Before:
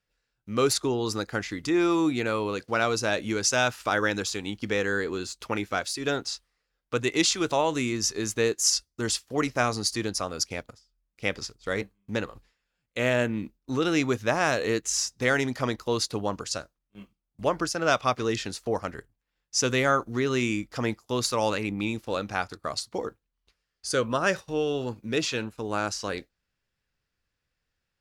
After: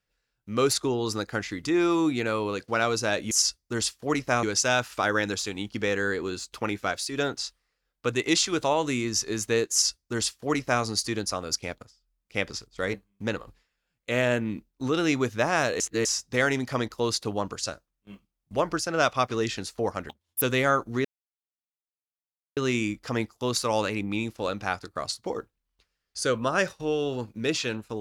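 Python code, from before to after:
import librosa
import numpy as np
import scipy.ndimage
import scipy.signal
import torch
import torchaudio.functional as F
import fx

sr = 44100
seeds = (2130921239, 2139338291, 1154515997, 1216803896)

y = fx.edit(x, sr, fx.duplicate(start_s=8.59, length_s=1.12, to_s=3.31),
    fx.reverse_span(start_s=14.68, length_s=0.25),
    fx.speed_span(start_s=18.97, length_s=0.65, speed=1.99),
    fx.insert_silence(at_s=20.25, length_s=1.52), tone=tone)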